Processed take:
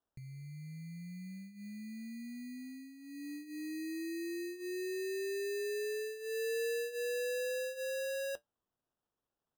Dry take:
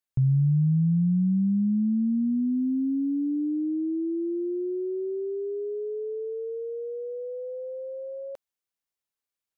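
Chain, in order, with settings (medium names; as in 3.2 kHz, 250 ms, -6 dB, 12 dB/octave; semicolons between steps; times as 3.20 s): compressor with a negative ratio -33 dBFS, ratio -1; flange 0.3 Hz, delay 4.8 ms, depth 3 ms, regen -64%; sample-and-hold 20×; trim -3.5 dB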